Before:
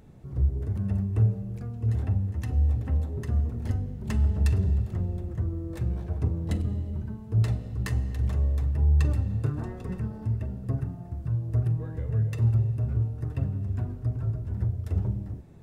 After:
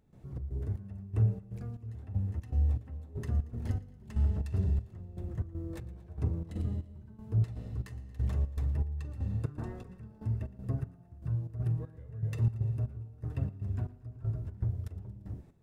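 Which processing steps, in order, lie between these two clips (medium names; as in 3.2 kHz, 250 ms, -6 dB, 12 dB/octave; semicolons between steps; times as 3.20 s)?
trance gate ".xx.xx.." 119 bpm -12 dB; thinning echo 115 ms, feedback 57%, level -19 dB; trim -4.5 dB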